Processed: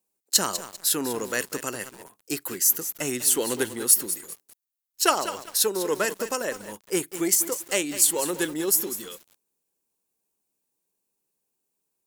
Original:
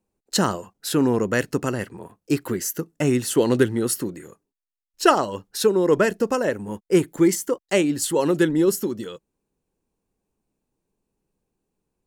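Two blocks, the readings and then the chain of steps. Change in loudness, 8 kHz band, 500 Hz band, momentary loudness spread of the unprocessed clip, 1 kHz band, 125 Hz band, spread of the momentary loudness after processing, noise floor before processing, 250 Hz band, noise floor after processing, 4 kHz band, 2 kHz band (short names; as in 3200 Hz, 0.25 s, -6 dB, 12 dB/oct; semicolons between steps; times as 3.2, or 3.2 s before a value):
-2.0 dB, +7.5 dB, -8.0 dB, 10 LU, -4.5 dB, -15.5 dB, 13 LU, -85 dBFS, -10.5 dB, -80 dBFS, +2.0 dB, -2.5 dB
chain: added harmonics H 2 -18 dB, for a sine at -3.5 dBFS; RIAA curve recording; lo-fi delay 0.197 s, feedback 35%, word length 5-bit, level -11 dB; gain -5 dB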